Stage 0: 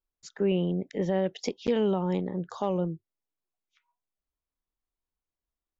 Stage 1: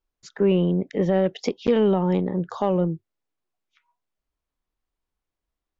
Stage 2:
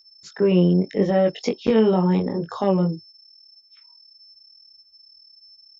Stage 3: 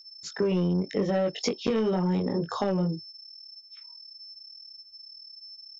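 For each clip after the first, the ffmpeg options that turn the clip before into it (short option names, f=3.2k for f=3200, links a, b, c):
-filter_complex "[0:a]aemphasis=mode=reproduction:type=50kf,asplit=2[a][b];[b]asoftclip=type=tanh:threshold=-25.5dB,volume=-10dB[c];[a][c]amix=inputs=2:normalize=0,volume=5dB"
-af "aeval=exprs='val(0)+0.00316*sin(2*PI*5300*n/s)':c=same,flanger=delay=19.5:depth=3:speed=0.82,highpass=47,volume=5dB"
-af "asoftclip=type=tanh:threshold=-12dB,equalizer=f=6.2k:w=0.94:g=4.5,acompressor=threshold=-23dB:ratio=6"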